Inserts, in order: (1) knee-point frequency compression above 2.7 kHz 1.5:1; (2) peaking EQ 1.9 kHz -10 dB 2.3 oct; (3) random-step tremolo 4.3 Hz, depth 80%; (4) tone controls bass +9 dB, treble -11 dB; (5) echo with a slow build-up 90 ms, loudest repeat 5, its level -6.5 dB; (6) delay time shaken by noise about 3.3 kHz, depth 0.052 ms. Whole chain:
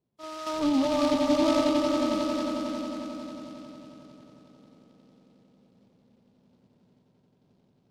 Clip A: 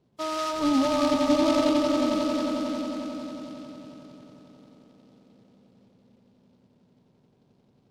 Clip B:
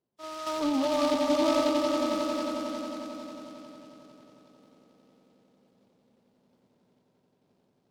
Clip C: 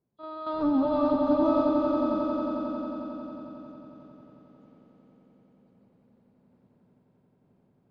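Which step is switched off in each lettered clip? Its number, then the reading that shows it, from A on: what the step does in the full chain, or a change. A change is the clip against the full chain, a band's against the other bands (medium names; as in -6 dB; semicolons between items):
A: 3, loudness change +1.5 LU; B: 4, 125 Hz band -7.0 dB; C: 6, 2 kHz band -9.5 dB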